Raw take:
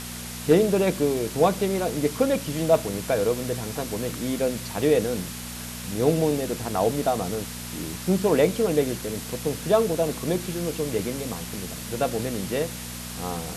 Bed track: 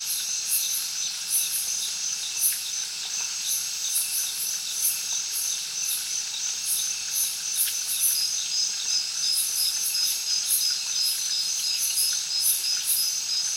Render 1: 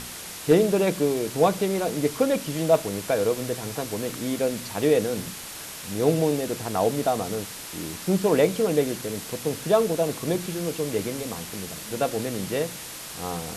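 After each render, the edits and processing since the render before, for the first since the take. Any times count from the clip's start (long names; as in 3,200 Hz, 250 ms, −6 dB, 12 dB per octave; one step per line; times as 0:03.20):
hum removal 60 Hz, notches 4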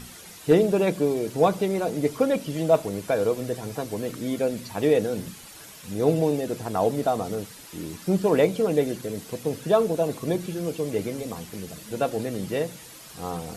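broadband denoise 10 dB, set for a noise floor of −38 dBFS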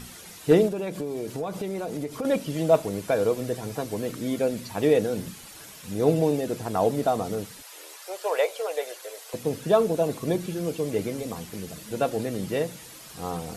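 0:00.68–0:02.25: downward compressor, threshold −27 dBFS
0:07.62–0:09.34: Butterworth high-pass 510 Hz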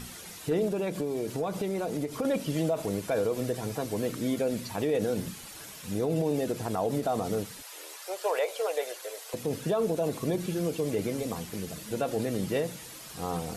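brickwall limiter −19.5 dBFS, peak gain reduction 11.5 dB
every ending faded ahead of time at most 300 dB per second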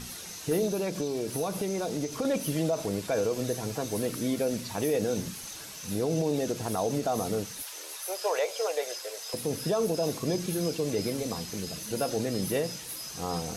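mix in bed track −16.5 dB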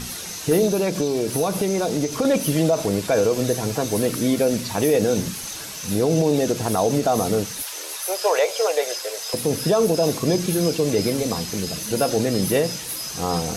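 level +9 dB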